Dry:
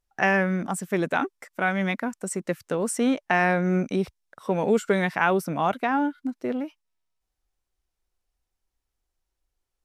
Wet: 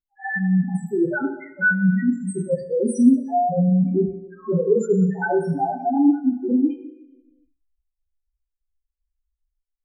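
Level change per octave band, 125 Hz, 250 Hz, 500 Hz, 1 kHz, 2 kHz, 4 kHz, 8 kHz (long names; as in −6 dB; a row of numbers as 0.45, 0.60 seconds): +7.0 dB, +7.5 dB, +3.0 dB, 0.0 dB, +1.5 dB, below −25 dB, can't be measured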